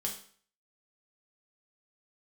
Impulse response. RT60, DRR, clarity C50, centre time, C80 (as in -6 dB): 0.50 s, -0.5 dB, 8.0 dB, 21 ms, 12.0 dB